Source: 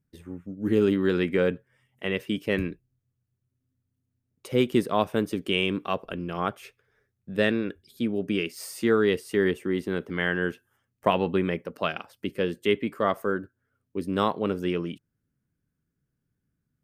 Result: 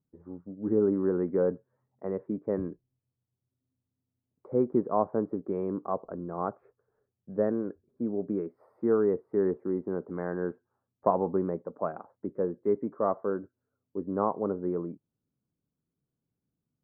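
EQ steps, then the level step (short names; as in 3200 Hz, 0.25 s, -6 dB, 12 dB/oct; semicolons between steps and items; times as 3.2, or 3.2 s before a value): inverse Chebyshev low-pass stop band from 2700 Hz, stop band 50 dB; low shelf 93 Hz -11.5 dB; low shelf 410 Hz -3.5 dB; 0.0 dB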